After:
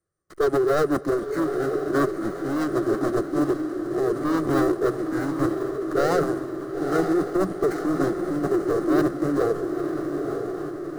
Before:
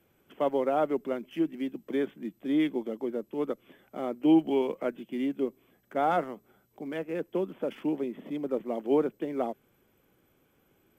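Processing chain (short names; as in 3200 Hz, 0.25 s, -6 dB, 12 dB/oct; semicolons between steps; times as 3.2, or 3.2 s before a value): notches 60/120/180 Hz; sample leveller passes 5; fixed phaser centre 920 Hz, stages 6; diffused feedback echo 0.945 s, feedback 60%, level -5.5 dB; in parallel at -9 dB: backlash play -32.5 dBFS; on the sum: formant shift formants -5 st; on a send at -20 dB: reverb RT60 2.8 s, pre-delay 91 ms; on the sum: gain -3 dB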